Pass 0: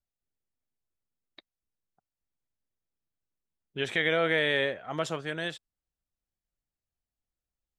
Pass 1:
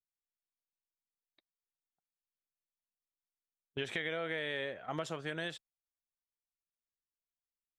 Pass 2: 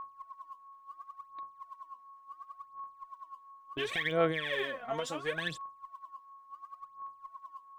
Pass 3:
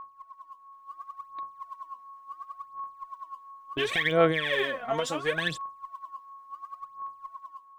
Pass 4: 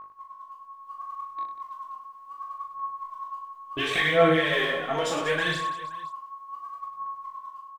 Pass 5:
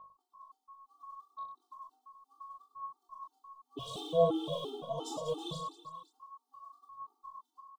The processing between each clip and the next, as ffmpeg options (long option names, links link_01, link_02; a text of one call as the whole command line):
ffmpeg -i in.wav -af "agate=range=-20dB:threshold=-43dB:ratio=16:detection=peak,acompressor=threshold=-34dB:ratio=6" out.wav
ffmpeg -i in.wav -af "aeval=exprs='val(0)+0.00316*sin(2*PI*1100*n/s)':channel_layout=same,aphaser=in_gain=1:out_gain=1:delay=4.4:decay=0.78:speed=0.71:type=sinusoidal" out.wav
ffmpeg -i in.wav -af "dynaudnorm=framelen=520:gausssize=3:maxgain=6.5dB" out.wav
ffmpeg -i in.wav -filter_complex "[0:a]flanger=delay=18.5:depth=7.2:speed=0.45,asplit=2[link_01][link_02];[link_02]aecho=0:1:40|100|190|325|527.5:0.631|0.398|0.251|0.158|0.1[link_03];[link_01][link_03]amix=inputs=2:normalize=0,volume=4dB" out.wav
ffmpeg -i in.wav -af "asuperstop=centerf=1900:order=8:qfactor=0.84,afftfilt=real='re*gt(sin(2*PI*2.9*pts/sr)*(1-2*mod(floor(b*sr/1024/230),2)),0)':imag='im*gt(sin(2*PI*2.9*pts/sr)*(1-2*mod(floor(b*sr/1024/230),2)),0)':win_size=1024:overlap=0.75,volume=-6dB" out.wav